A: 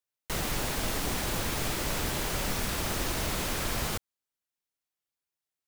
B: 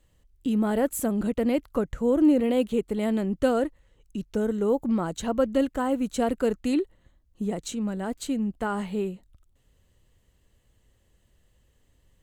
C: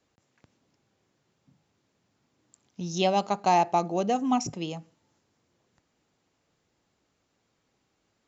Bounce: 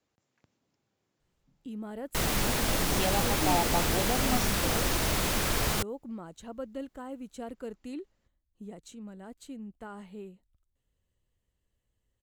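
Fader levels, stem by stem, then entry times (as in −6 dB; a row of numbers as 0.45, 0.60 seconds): +3.0, −15.0, −7.0 decibels; 1.85, 1.20, 0.00 seconds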